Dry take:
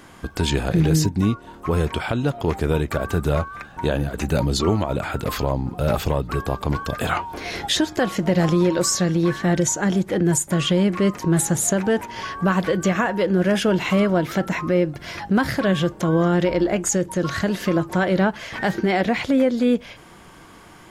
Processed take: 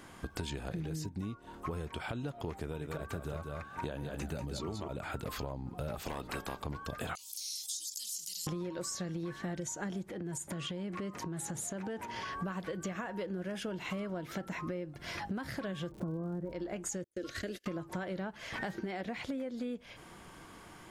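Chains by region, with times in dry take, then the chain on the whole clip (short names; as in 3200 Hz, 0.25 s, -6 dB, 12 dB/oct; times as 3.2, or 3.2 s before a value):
2.62–4.88 HPF 49 Hz + echo 0.192 s -5.5 dB
6–6.6 spectral limiter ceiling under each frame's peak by 18 dB + overloaded stage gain 13.5 dB
7.15–8.47 inverse Chebyshev high-pass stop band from 1700 Hz, stop band 60 dB + fast leveller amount 70%
10.11–12.33 HPF 54 Hz + high shelf 8800 Hz -6 dB + compressor 4:1, threshold -28 dBFS
15.9–16.51 LPF 1600 Hz 24 dB/oct + tilt shelf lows +7.5 dB, about 640 Hz + crackle 150/s -32 dBFS
17.04–17.66 gate -28 dBFS, range -38 dB + fixed phaser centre 380 Hz, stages 4
whole clip: bell 9000 Hz +2.5 dB 0.29 oct; compressor 12:1, threshold -28 dBFS; gain -7 dB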